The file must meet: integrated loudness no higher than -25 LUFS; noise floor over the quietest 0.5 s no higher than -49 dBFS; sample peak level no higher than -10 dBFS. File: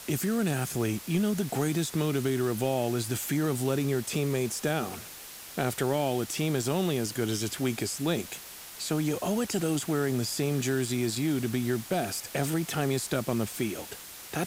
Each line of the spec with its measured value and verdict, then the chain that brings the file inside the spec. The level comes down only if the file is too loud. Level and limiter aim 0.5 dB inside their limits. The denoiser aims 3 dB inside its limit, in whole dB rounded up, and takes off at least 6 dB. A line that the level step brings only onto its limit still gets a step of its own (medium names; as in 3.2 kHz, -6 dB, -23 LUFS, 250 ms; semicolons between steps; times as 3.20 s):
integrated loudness -29.5 LUFS: pass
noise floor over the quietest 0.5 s -45 dBFS: fail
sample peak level -13.5 dBFS: pass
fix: noise reduction 7 dB, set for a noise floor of -45 dBFS